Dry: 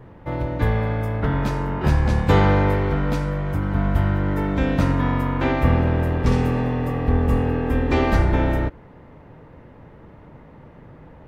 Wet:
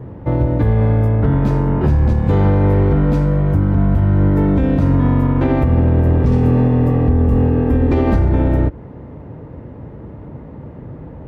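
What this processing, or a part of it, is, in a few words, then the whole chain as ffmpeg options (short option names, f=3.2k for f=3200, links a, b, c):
mastering chain: -af "highpass=54,equalizer=f=170:t=o:w=0.34:g=-3.5,acompressor=threshold=-27dB:ratio=1.5,tiltshelf=f=750:g=8,alimiter=level_in=11.5dB:limit=-1dB:release=50:level=0:latency=1,volume=-5dB"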